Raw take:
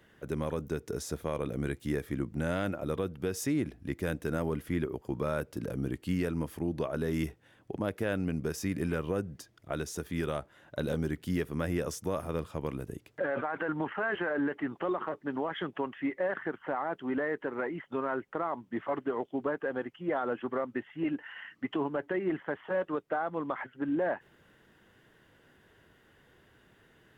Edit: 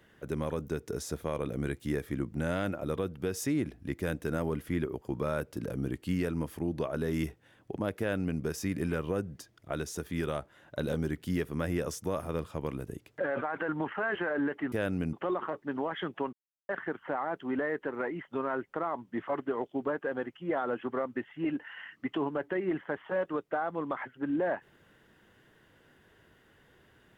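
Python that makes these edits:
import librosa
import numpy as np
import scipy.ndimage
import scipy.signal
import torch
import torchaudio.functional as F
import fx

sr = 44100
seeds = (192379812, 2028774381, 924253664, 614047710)

y = fx.edit(x, sr, fx.duplicate(start_s=7.99, length_s=0.41, to_s=14.72),
    fx.silence(start_s=15.92, length_s=0.36), tone=tone)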